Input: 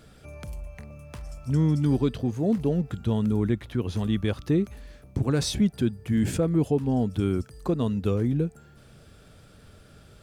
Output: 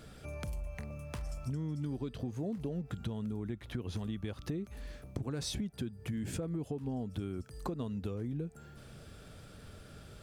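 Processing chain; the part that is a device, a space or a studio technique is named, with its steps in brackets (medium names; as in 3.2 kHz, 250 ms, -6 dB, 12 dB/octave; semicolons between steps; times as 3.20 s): serial compression, peaks first (compression, threshold -31 dBFS, peak gain reduction 13 dB; compression 2:1, threshold -36 dBFS, peak gain reduction 5 dB)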